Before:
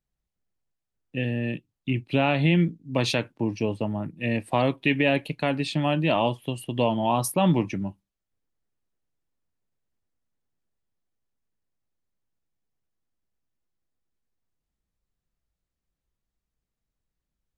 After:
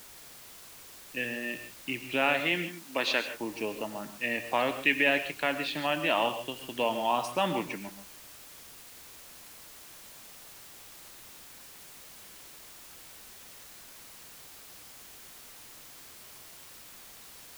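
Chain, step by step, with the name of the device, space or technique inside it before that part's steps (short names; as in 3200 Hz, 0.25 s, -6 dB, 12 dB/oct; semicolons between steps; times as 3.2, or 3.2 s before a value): horn gramophone (BPF 230–3400 Hz; bell 1600 Hz +6 dB; wow and flutter 23 cents; pink noise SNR 19 dB); 2.4–3.35 HPF 210 Hz 12 dB/oct; tilt +2.5 dB/oct; non-linear reverb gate 0.17 s rising, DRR 10 dB; gain -3.5 dB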